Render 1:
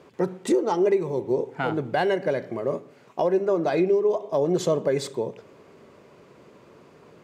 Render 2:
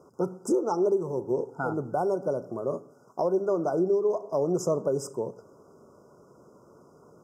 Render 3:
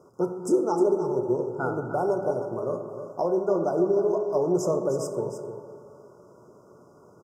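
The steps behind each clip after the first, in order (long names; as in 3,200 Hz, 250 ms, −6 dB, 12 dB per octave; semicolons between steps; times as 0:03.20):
brick-wall band-stop 1,500–4,900 Hz; high-shelf EQ 7,100 Hz +4 dB; level −3.5 dB
single-tap delay 308 ms −10 dB; convolution reverb RT60 2.5 s, pre-delay 4 ms, DRR 5 dB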